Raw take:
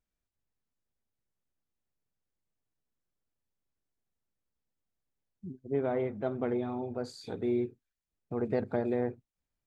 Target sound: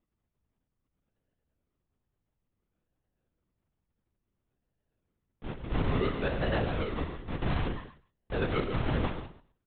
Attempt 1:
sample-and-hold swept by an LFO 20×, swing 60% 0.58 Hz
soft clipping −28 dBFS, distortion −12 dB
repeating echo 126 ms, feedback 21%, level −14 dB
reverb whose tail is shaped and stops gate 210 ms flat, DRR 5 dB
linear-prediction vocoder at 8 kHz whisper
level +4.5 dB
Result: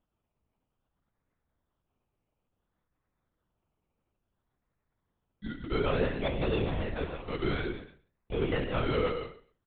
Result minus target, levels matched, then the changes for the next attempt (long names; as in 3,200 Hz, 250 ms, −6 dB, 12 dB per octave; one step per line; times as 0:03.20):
sample-and-hold swept by an LFO: distortion −19 dB
change: sample-and-hold swept by an LFO 54×, swing 60% 0.58 Hz